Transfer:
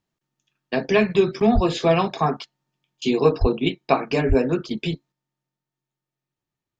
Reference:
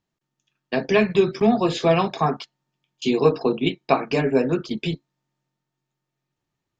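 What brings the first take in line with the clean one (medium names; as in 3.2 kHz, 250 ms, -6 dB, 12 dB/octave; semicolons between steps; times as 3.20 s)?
1.54–1.66 s: high-pass 140 Hz 24 dB/octave; 3.40–3.52 s: high-pass 140 Hz 24 dB/octave; 4.28–4.40 s: high-pass 140 Hz 24 dB/octave; 5.12 s: gain correction +6 dB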